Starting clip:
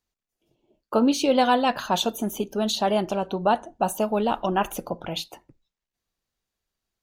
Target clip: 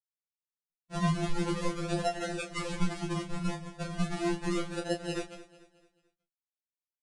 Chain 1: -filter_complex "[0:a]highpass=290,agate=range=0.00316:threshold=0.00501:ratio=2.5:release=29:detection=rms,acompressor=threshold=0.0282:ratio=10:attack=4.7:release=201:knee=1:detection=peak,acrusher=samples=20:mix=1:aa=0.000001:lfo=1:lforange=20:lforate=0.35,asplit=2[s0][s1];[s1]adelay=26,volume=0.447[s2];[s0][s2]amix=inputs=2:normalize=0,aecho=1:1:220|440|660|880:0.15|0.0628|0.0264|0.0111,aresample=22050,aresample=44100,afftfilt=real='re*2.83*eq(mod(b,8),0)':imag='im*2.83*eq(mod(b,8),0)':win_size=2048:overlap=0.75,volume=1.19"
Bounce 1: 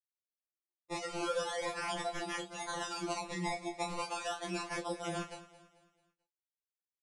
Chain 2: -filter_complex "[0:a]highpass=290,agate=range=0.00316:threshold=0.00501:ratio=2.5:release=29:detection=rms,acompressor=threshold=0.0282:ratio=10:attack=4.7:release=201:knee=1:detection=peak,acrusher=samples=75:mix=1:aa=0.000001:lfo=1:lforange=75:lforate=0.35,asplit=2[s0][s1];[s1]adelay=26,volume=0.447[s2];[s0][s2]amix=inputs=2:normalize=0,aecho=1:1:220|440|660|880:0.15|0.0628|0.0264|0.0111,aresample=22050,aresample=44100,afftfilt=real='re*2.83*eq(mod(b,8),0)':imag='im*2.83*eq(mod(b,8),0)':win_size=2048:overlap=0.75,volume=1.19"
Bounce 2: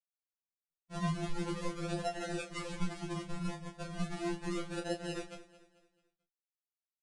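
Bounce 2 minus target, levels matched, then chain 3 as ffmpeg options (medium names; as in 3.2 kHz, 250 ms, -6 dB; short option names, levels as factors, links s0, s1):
compression: peak gain reduction +6 dB
-filter_complex "[0:a]highpass=290,agate=range=0.00316:threshold=0.00501:ratio=2.5:release=29:detection=rms,acompressor=threshold=0.0596:ratio=10:attack=4.7:release=201:knee=1:detection=peak,acrusher=samples=75:mix=1:aa=0.000001:lfo=1:lforange=75:lforate=0.35,asplit=2[s0][s1];[s1]adelay=26,volume=0.447[s2];[s0][s2]amix=inputs=2:normalize=0,aecho=1:1:220|440|660|880:0.15|0.0628|0.0264|0.0111,aresample=22050,aresample=44100,afftfilt=real='re*2.83*eq(mod(b,8),0)':imag='im*2.83*eq(mod(b,8),0)':win_size=2048:overlap=0.75,volume=1.19"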